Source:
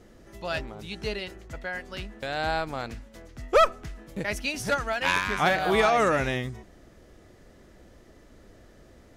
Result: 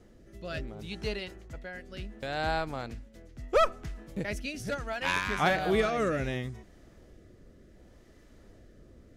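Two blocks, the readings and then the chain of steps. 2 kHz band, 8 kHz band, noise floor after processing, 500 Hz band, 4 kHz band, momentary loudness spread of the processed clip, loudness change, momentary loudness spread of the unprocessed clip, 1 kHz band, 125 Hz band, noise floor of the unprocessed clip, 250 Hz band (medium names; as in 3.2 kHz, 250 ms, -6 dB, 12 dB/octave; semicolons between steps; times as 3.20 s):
-5.5 dB, -6.5 dB, -57 dBFS, -4.0 dB, -5.0 dB, 17 LU, -5.0 dB, 17 LU, -6.0 dB, -1.5 dB, -54 dBFS, -2.0 dB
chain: rotary cabinet horn 0.7 Hz; bass shelf 320 Hz +3.5 dB; trim -3 dB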